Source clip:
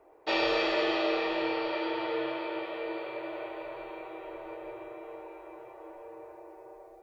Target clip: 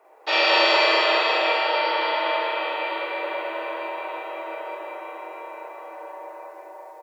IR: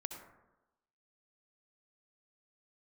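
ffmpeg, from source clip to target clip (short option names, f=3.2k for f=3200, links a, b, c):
-filter_complex "[0:a]highpass=690,aecho=1:1:105|204.1:0.316|0.708,asplit=2[a][b];[1:a]atrim=start_sample=2205,adelay=45[c];[b][c]afir=irnorm=-1:irlink=0,volume=3dB[d];[a][d]amix=inputs=2:normalize=0,volume=7dB"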